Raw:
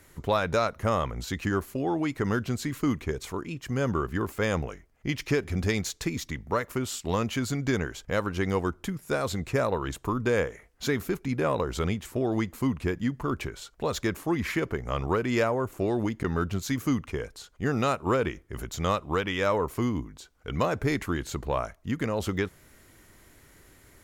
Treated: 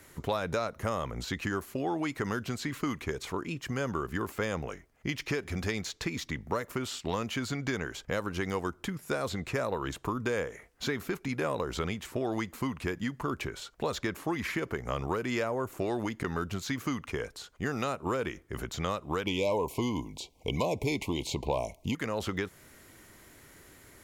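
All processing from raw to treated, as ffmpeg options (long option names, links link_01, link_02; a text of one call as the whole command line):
ffmpeg -i in.wav -filter_complex "[0:a]asettb=1/sr,asplit=3[link_01][link_02][link_03];[link_01]atrim=end=19.264[link_04];[link_02]atrim=start=19.26:end=21.95,asetpts=PTS-STARTPTS,afade=type=in:duration=0.004:curve=qsin,afade=type=out:start_time=2.686:duration=0.004:curve=qsin,aeval=exprs='0.299*sin(PI/2*1.41*val(0)/0.299)':channel_layout=same,asuperstop=centerf=1500:order=12:qfactor=1.3[link_05];[link_03]atrim=start=21.946[link_06];[link_04][link_05]acrossfade=duration=0.004:curve1=hsin:curve2=qsin[link_07];[link_07][link_06]acrossfade=duration=0.004:curve1=qsin:curve2=hsin,lowshelf=frequency=71:gain=-9.5,acrossover=split=660|5100[link_08][link_09][link_10];[link_08]acompressor=threshold=-34dB:ratio=4[link_11];[link_09]acompressor=threshold=-36dB:ratio=4[link_12];[link_10]acompressor=threshold=-51dB:ratio=4[link_13];[link_11][link_12][link_13]amix=inputs=3:normalize=0,volume=2dB" out.wav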